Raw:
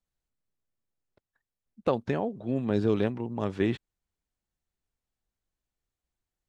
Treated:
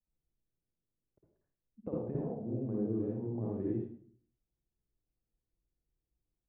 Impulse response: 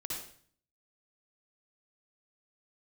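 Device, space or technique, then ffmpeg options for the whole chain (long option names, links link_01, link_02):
television next door: -filter_complex "[0:a]acompressor=threshold=-32dB:ratio=6,lowpass=530[link_01];[1:a]atrim=start_sample=2205[link_02];[link_01][link_02]afir=irnorm=-1:irlink=0"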